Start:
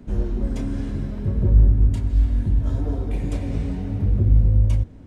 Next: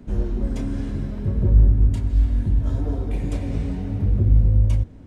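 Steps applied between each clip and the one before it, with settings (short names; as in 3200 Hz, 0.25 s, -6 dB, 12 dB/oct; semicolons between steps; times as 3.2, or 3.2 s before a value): nothing audible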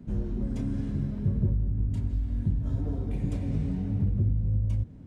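compressor 6:1, threshold -18 dBFS, peak gain reduction 10 dB; bell 150 Hz +10.5 dB 1.6 oct; gain -9 dB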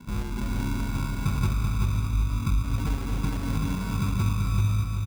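sample-and-hold 36×; feedback echo 0.385 s, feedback 38%, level -4 dB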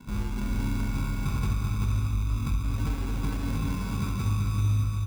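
soft clip -18.5 dBFS, distortion -19 dB; on a send at -6 dB: reverb, pre-delay 3 ms; on the sum: gain -2 dB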